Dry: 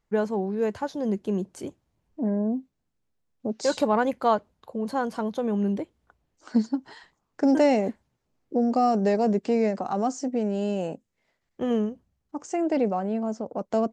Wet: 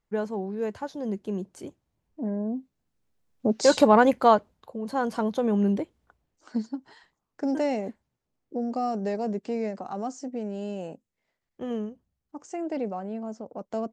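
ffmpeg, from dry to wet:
ffmpeg -i in.wav -af "volume=12dB,afade=type=in:start_time=2.49:duration=0.99:silence=0.334965,afade=type=out:start_time=4.12:duration=0.69:silence=0.316228,afade=type=in:start_time=4.81:duration=0.3:silence=0.473151,afade=type=out:start_time=5.72:duration=0.84:silence=0.375837" out.wav

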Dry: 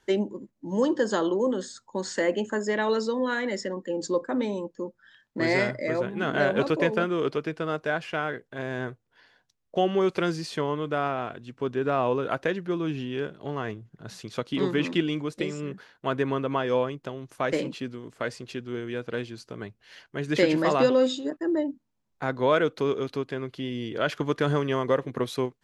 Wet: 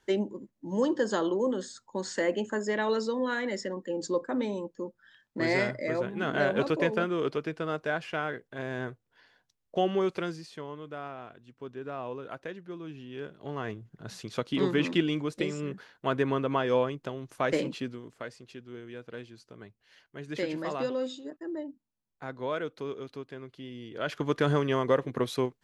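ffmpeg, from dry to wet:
ffmpeg -i in.wav -af "volume=18dB,afade=type=out:start_time=9.93:duration=0.55:silence=0.334965,afade=type=in:start_time=13.02:duration=0.9:silence=0.266073,afade=type=out:start_time=17.83:duration=0.45:silence=0.334965,afade=type=in:start_time=23.9:duration=0.46:silence=0.334965" out.wav

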